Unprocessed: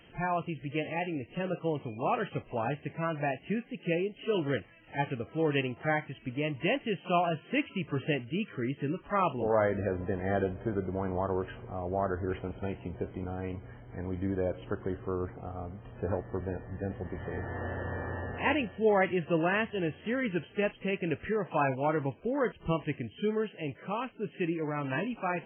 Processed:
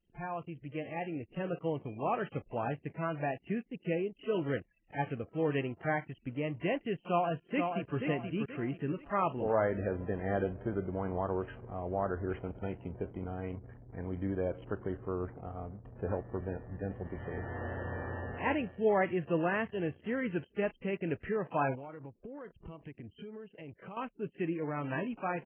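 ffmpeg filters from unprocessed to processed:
ffmpeg -i in.wav -filter_complex "[0:a]asplit=2[link_01][link_02];[link_02]afade=type=in:start_time=7.07:duration=0.01,afade=type=out:start_time=7.97:duration=0.01,aecho=0:1:480|960|1440|1920:0.562341|0.196819|0.0688868|0.0241104[link_03];[link_01][link_03]amix=inputs=2:normalize=0,asettb=1/sr,asplit=3[link_04][link_05][link_06];[link_04]atrim=end=21.754[link_07];[link_05]atrim=start=21.75:end=23.97,asetpts=PTS-STARTPTS,afade=type=in:duration=0.004:curve=qsin,afade=type=out:start_time=2.216:duration=0.004:curve=qsin,acompressor=threshold=-39dB:ratio=12:attack=3.2:release=140:knee=1:detection=peak[link_08];[link_06]atrim=start=23.966[link_09];[link_07][link_08]acrossfade=duration=0.004:curve1=hsin:curve2=qsin[link_10];[link_10][link_09]acrossfade=duration=0.004:curve1=qsin:curve2=hsin,acrossover=split=2500[link_11][link_12];[link_12]acompressor=threshold=-57dB:ratio=4:attack=1:release=60[link_13];[link_11][link_13]amix=inputs=2:normalize=0,anlmdn=0.01,dynaudnorm=framelen=350:gausssize=5:maxgain=5.5dB,volume=-8dB" out.wav

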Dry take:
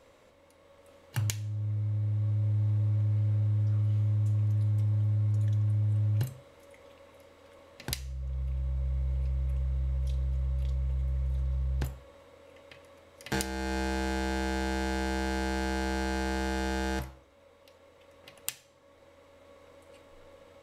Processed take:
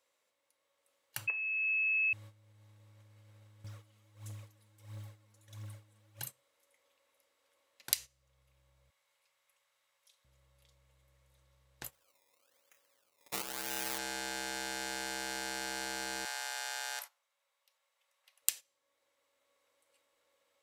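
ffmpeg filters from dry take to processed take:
ffmpeg -i in.wav -filter_complex "[0:a]asettb=1/sr,asplit=3[link_01][link_02][link_03];[link_01]atrim=end=1.274[link_04];[link_02]atrim=start=1.27:end=2.13,asetpts=PTS-STARTPTS,afade=type=in:duration=0.004:curve=qsin,afade=type=out:start_time=0.856:duration=0.004:curve=qsin,lowpass=frequency=2300:width_type=q:width=0.5098,lowpass=frequency=2300:width_type=q:width=0.6013,lowpass=frequency=2300:width_type=q:width=0.9,lowpass=frequency=2300:width_type=q:width=2.563,afreqshift=-2700[link_05];[link_03]atrim=start=2.126[link_06];[link_04][link_05]acrossfade=duration=0.004:curve1=hsin:curve2=qsin[link_07];[link_07][link_06]acrossfade=duration=0.004:curve1=qsin:curve2=hsin,asettb=1/sr,asplit=3[link_08][link_09][link_10];[link_08]atrim=end=3.644[link_11];[link_09]atrim=start=3.64:end=6.27,asetpts=PTS-STARTPTS,afade=type=in:duration=0.004:curve=qsin,afade=type=out:start_time=2.626:duration=0.004:curve=qsin,aphaser=in_gain=1:out_gain=1:delay=4.6:decay=0.51:speed=1.5:type=triangular[link_12];[link_10]atrim=start=6.266[link_13];[link_11][link_12]acrossfade=duration=0.004:curve1=hsin:curve2=qsin[link_14];[link_14][link_13]acrossfade=duration=0.004:curve1=qsin:curve2=hsin,asettb=1/sr,asplit=3[link_15][link_16][link_17];[link_15]atrim=end=8.904[link_18];[link_16]atrim=start=8.9:end=10.25,asetpts=PTS-STARTPTS,afade=type=in:duration=0.004:curve=qsin,afade=type=out:start_time=1.346:duration=0.004:curve=qsin,highpass=880[link_19];[link_17]atrim=start=10.246[link_20];[link_18][link_19]acrossfade=duration=0.004:curve1=hsin:curve2=qsin[link_21];[link_21][link_20]acrossfade=duration=0.004:curve1=qsin:curve2=hsin,asplit=3[link_22][link_23][link_24];[link_22]afade=type=out:start_time=11.91:duration=0.02[link_25];[link_23]acrusher=samples=20:mix=1:aa=0.000001:lfo=1:lforange=20:lforate=1,afade=type=in:start_time=11.91:duration=0.02,afade=type=out:start_time=13.97:duration=0.02[link_26];[link_24]afade=type=in:start_time=13.97:duration=0.02[link_27];[link_25][link_26][link_27]amix=inputs=3:normalize=0,asettb=1/sr,asplit=3[link_28][link_29][link_30];[link_28]atrim=end=16.254[link_31];[link_29]atrim=start=16.25:end=18.42,asetpts=PTS-STARTPTS,afade=type=in:duration=0.004:curve=qsin,afade=type=out:start_time=2.166:duration=0.004:curve=qsin,highpass=frequency=650:width=0.5412,highpass=frequency=650:width=1.3066[link_32];[link_30]atrim=start=18.416[link_33];[link_31][link_32]acrossfade=duration=0.004:curve1=hsin:curve2=qsin[link_34];[link_34][link_33]acrossfade=duration=0.004:curve1=qsin:curve2=hsin,highpass=frequency=1300:poles=1,agate=range=-14dB:threshold=-47dB:ratio=16:detection=peak,highshelf=frequency=5700:gain=10.5,volume=-2dB" out.wav

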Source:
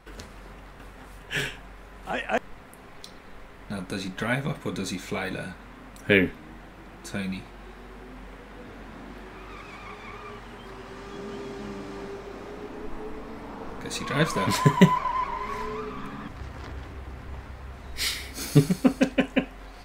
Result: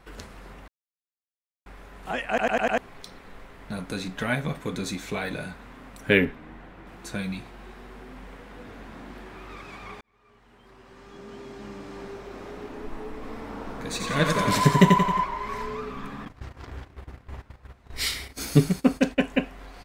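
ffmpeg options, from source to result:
ffmpeg -i in.wav -filter_complex "[0:a]asettb=1/sr,asplit=3[link_01][link_02][link_03];[link_01]atrim=end=6.254[link_04];[link_02]atrim=start=6.25:end=6.87,asetpts=PTS-STARTPTS,afade=type=in:duration=0.004:curve=qsin,afade=type=out:start_time=0.616:duration=0.004:curve=qsin,bass=frequency=250:gain=0,treble=frequency=4000:gain=-10[link_05];[link_03]atrim=start=6.866[link_06];[link_04][link_05]acrossfade=duration=0.004:curve1=hsin:curve2=qsin[link_07];[link_07][link_06]acrossfade=duration=0.004:curve1=qsin:curve2=hsin,asplit=3[link_08][link_09][link_10];[link_08]afade=type=out:start_time=13.21:duration=0.02[link_11];[link_09]aecho=1:1:89|178|267|356|445|534|623:0.631|0.334|0.177|0.0939|0.0498|0.0264|0.014,afade=type=in:start_time=13.21:duration=0.02,afade=type=out:start_time=15.24:duration=0.02[link_12];[link_10]afade=type=in:start_time=15.24:duration=0.02[link_13];[link_11][link_12][link_13]amix=inputs=3:normalize=0,asettb=1/sr,asplit=3[link_14][link_15][link_16];[link_14]atrim=end=16.254[link_17];[link_15]atrim=start=16.25:end=19.21,asetpts=PTS-STARTPTS,afade=type=in:duration=0.004:curve=qsin,afade=type=out:start_time=2.956:duration=0.004:curve=qsin,agate=range=-15dB:threshold=-39dB:ratio=16:release=100:detection=peak[link_18];[link_16]atrim=start=19.206[link_19];[link_17][link_18]acrossfade=duration=0.004:curve1=hsin:curve2=qsin[link_20];[link_20][link_19]acrossfade=duration=0.004:curve1=qsin:curve2=hsin,asplit=9[link_21][link_22][link_23][link_24][link_25][link_26][link_27][link_28][link_29];[link_21]atrim=end=0.68,asetpts=PTS-STARTPTS,afade=type=out:start_time=0.676:duration=0.004:curve=hsin[link_30];[link_22]atrim=start=0.68:end=1.66,asetpts=PTS-STARTPTS,volume=0[link_31];[link_23]atrim=start=1.66:end=2.392,asetpts=PTS-STARTPTS,afade=type=in:duration=0.004:curve=hsin[link_32];[link_24]atrim=start=2.288:end=2.392[link_33];[link_25]atrim=start=2.288:end=2.392[link_34];[link_26]atrim=start=2.288:end=2.392[link_35];[link_27]atrim=start=2.288:end=2.392[link_36];[link_28]atrim=start=2.788:end=10.01,asetpts=PTS-STARTPTS,afade=type=out:start_time=7.218:duration=0.004:curve=hsin[link_37];[link_29]atrim=start=10.01,asetpts=PTS-STARTPTS,afade=type=in:duration=2.47[link_38];[link_30][link_31][link_32]concat=n=3:v=0:a=1[link_39];[link_39][link_33]acrossfade=duration=0.004:curve1=hsin:curve2=hsin[link_40];[link_40][link_34]acrossfade=duration=0.004:curve1=hsin:curve2=hsin[link_41];[link_41][link_35]acrossfade=duration=0.004:curve1=hsin:curve2=hsin[link_42];[link_42][link_36]acrossfade=duration=0.004:curve1=hsin:curve2=hsin[link_43];[link_37][link_38]concat=n=2:v=0:a=1[link_44];[link_43][link_44]acrossfade=duration=0.004:curve1=hsin:curve2=hsin" out.wav

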